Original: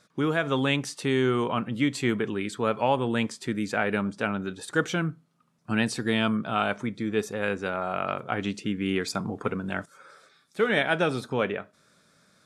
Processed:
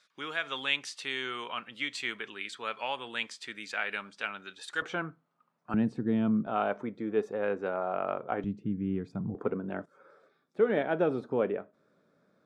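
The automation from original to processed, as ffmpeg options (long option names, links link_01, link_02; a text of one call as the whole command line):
ffmpeg -i in.wav -af "asetnsamples=nb_out_samples=441:pad=0,asendcmd='4.82 bandpass f 920;5.74 bandpass f 210;6.47 bandpass f 550;8.44 bandpass f 130;9.35 bandpass f 400',bandpass=frequency=3000:width_type=q:width=0.91:csg=0" out.wav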